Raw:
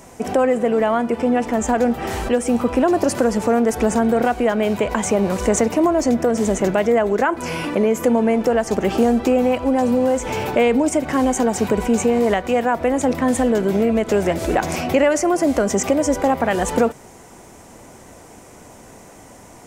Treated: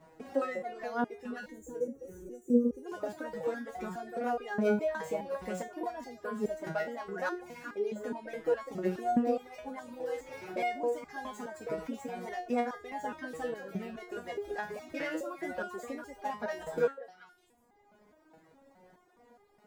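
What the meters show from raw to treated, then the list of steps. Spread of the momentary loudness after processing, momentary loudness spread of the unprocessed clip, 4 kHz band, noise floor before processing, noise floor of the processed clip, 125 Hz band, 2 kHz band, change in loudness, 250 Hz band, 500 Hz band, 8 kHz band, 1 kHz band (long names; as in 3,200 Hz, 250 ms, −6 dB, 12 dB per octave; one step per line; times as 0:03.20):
12 LU, 3 LU, −19.5 dB, −43 dBFS, −66 dBFS, −19.5 dB, −14.0 dB, −17.0 dB, −18.5 dB, −17.0 dB, −27.5 dB, −15.5 dB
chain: running median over 15 samples
low-shelf EQ 67 Hz −8 dB
echo through a band-pass that steps 200 ms, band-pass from 560 Hz, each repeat 1.4 octaves, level −3.5 dB
reverb reduction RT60 1.6 s
gain on a spectral selection 0:01.49–0:02.86, 580–5,700 Hz −23 dB
parametric band 1,700 Hz +3.5 dB 0.58 octaves
step-sequenced resonator 4.8 Hz 160–410 Hz
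level −1 dB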